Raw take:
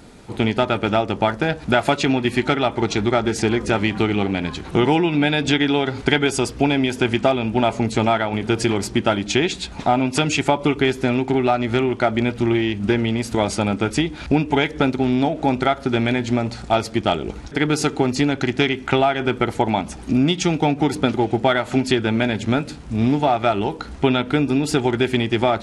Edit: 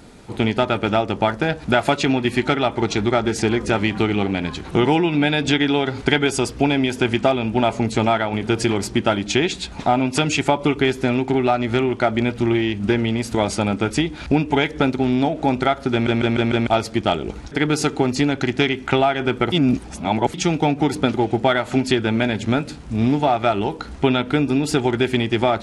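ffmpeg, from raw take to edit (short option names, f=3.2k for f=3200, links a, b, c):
-filter_complex "[0:a]asplit=8[a][b][c][d][e][f][g][h];[a]atrim=end=16.072[i];[b]atrim=start=15.918:end=16.072[j];[c]atrim=start=15.918:end=16.072[k];[d]atrim=start=15.918:end=16.072[l];[e]atrim=start=15.918:end=16.072[m];[f]atrim=start=16.668:end=19.522[n];[g]atrim=start=19.518:end=20.342,asetpts=PTS-STARTPTS,areverse[o];[h]atrim=start=20.338[p];[i][j]acrossfade=d=0.004:c1=hsin:c2=hsin[q];[q][k]acrossfade=d=0.004:c1=hsin:c2=hsin[r];[r][l]acrossfade=d=0.004:c1=hsin:c2=hsin[s];[s][m]acrossfade=d=0.004:c1=hsin:c2=hsin[t];[t][n]acrossfade=d=0.004:c1=hsin:c2=hsin[u];[u][o]acrossfade=d=0.004:c1=hsin:c2=hsin[v];[v][p]acrossfade=d=0.004:c1=hsin:c2=hsin"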